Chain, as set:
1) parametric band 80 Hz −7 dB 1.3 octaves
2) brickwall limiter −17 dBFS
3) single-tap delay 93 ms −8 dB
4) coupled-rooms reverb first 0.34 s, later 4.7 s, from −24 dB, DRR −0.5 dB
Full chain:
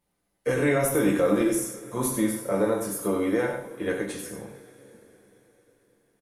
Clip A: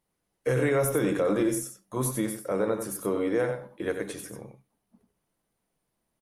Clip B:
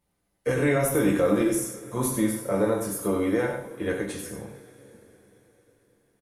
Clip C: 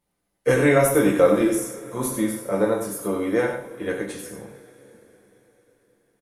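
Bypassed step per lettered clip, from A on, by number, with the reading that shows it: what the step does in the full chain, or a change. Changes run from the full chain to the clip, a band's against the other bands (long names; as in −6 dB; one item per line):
4, echo-to-direct ratio 1.5 dB to −8.0 dB
1, 125 Hz band +2.5 dB
2, change in crest factor +2.5 dB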